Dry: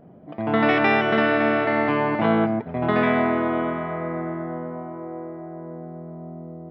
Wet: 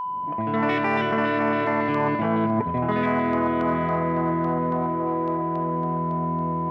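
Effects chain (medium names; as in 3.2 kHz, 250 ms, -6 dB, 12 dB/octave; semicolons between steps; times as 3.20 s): fade-in on the opening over 0.58 s; high-pass 57 Hz; bass shelf 78 Hz +11.5 dB; reverse; compression 5:1, threshold -29 dBFS, peak gain reduction 14 dB; reverse; LFO notch square 3.6 Hz 960–3800 Hz; whistle 1 kHz -35 dBFS; in parallel at -11 dB: saturation -33 dBFS, distortion -10 dB; on the sum: trim +7 dB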